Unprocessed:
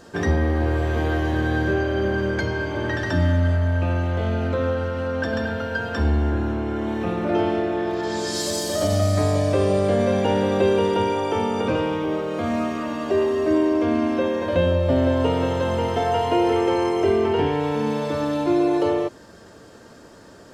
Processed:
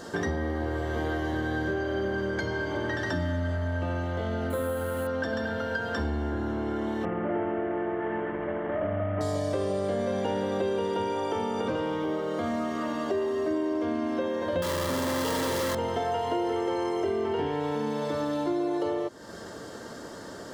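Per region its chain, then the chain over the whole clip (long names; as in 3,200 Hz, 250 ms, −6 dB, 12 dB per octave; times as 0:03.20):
0:04.50–0:05.07: high-shelf EQ 5,500 Hz +4 dB + bad sample-rate conversion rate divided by 4×, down filtered, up hold
0:07.05–0:09.21: variable-slope delta modulation 16 kbit/s + low-pass filter 2,400 Hz 24 dB per octave
0:14.62–0:15.75: sign of each sample alone + notch comb filter 740 Hz
whole clip: low-shelf EQ 100 Hz −9 dB; notch filter 2,500 Hz, Q 5.4; downward compressor 3 to 1, threshold −36 dBFS; level +5.5 dB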